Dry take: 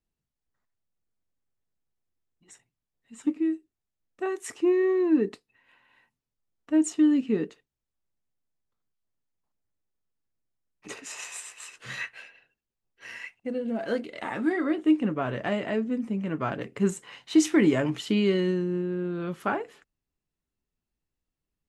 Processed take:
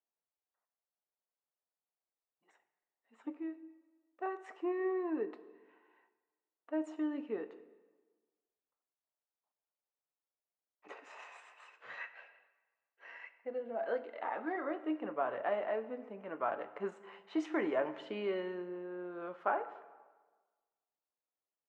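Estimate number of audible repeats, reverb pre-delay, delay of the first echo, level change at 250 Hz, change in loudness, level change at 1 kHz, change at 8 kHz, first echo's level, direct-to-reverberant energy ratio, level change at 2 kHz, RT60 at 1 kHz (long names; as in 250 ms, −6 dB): no echo audible, 14 ms, no echo audible, −15.5 dB, −12.0 dB, −3.0 dB, below −30 dB, no echo audible, 12.0 dB, −9.5 dB, 1.4 s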